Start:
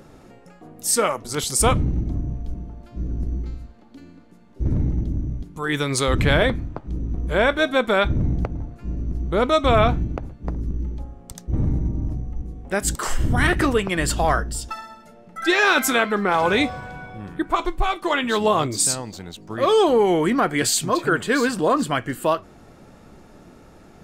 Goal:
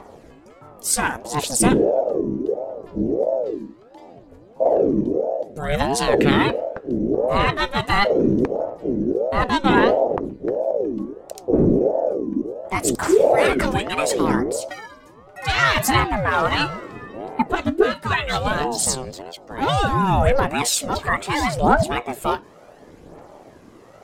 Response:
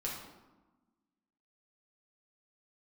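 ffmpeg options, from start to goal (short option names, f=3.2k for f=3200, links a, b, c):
-filter_complex "[0:a]asettb=1/sr,asplit=3[a][b][c];[a]atrim=end=7.794[d];[b]atrim=start=7.79:end=8.7,asetpts=PTS-STARTPTS,afade=t=in:d=0.004:c=qsin,afade=t=out:st=0.906:d=0.004:c=qsin,highshelf=f=3.6k:g=6.5[e];[c]atrim=start=8.696[f];[d][e]acrossfade=d=0.004:c1=hsin:c2=qsin[g];[g][f]acrossfade=d=0.004:c1=qsin:c2=hsin,aphaser=in_gain=1:out_gain=1:delay=1.5:decay=0.5:speed=0.69:type=triangular,aeval=exprs='val(0)*sin(2*PI*430*n/s+430*0.4/1.5*sin(2*PI*1.5*n/s))':c=same,volume=1.5dB"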